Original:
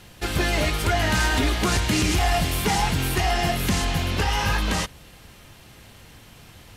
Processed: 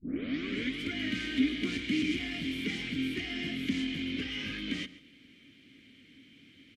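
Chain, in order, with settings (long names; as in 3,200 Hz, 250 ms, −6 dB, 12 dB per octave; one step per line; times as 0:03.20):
turntable start at the beginning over 0.83 s
in parallel at −3.5 dB: soft clipping −21 dBFS, distortion −13 dB
on the sum: formant filter i
slap from a distant wall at 24 metres, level −17 dB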